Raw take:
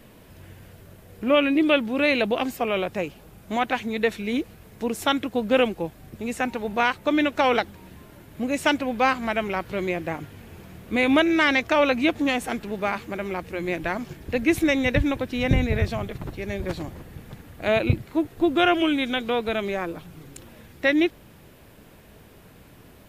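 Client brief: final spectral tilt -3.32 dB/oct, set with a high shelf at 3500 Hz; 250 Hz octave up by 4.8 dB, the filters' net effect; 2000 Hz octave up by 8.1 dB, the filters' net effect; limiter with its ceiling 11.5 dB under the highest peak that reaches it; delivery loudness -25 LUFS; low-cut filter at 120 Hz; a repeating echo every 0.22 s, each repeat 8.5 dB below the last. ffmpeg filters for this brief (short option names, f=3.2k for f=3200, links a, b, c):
-af "highpass=120,equalizer=f=250:t=o:g=6,equalizer=f=2k:t=o:g=8.5,highshelf=f=3.5k:g=4.5,alimiter=limit=-12.5dB:level=0:latency=1,aecho=1:1:220|440|660|880:0.376|0.143|0.0543|0.0206,volume=-2dB"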